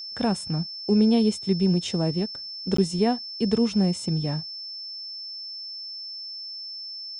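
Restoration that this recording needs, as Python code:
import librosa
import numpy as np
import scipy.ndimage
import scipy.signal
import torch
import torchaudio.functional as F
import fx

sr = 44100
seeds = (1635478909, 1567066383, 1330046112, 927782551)

y = fx.notch(x, sr, hz=5300.0, q=30.0)
y = fx.fix_interpolate(y, sr, at_s=(2.77,), length_ms=14.0)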